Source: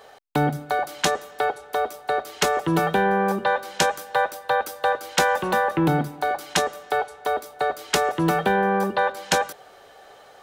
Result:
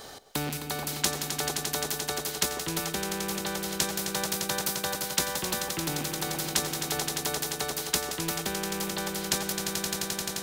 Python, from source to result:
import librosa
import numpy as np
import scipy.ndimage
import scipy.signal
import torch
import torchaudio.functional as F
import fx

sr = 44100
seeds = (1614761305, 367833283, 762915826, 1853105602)

y = fx.rattle_buzz(x, sr, strikes_db=-31.0, level_db=-29.0)
y = fx.band_shelf(y, sr, hz=1200.0, db=-11.0, octaves=3.0)
y = fx.echo_swell(y, sr, ms=87, loudest=5, wet_db=-15)
y = fx.rider(y, sr, range_db=3, speed_s=0.5)
y = fx.spectral_comp(y, sr, ratio=2.0)